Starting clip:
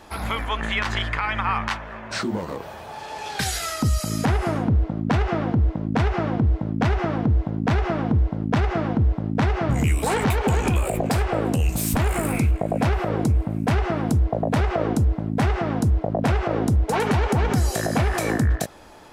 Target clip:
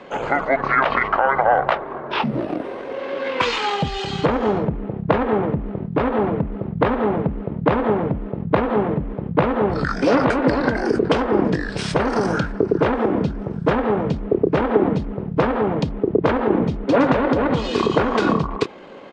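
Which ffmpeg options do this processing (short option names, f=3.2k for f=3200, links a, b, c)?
-filter_complex "[0:a]acrossover=split=290 6100:gain=0.1 1 0.1[a][b][c];[a][b][c]amix=inputs=3:normalize=0,asetrate=27781,aresample=44100,atempo=1.5874,volume=8.5dB"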